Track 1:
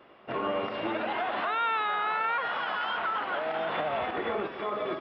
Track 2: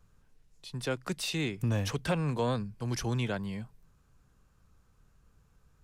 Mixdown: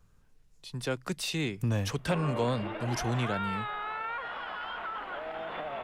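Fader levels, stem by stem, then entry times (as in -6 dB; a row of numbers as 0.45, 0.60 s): -7.0, +0.5 dB; 1.80, 0.00 s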